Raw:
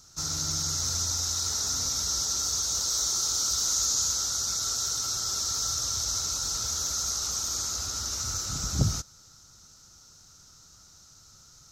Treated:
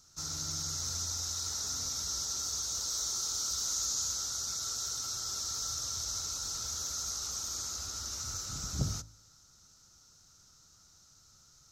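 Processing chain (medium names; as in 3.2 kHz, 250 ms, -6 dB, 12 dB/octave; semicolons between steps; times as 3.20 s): de-hum 53.57 Hz, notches 19; trim -7 dB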